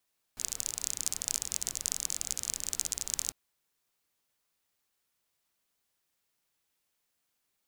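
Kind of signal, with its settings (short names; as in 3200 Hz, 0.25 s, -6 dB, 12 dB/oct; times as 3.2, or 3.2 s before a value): rain from filtered ticks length 2.95 s, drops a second 33, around 6900 Hz, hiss -15 dB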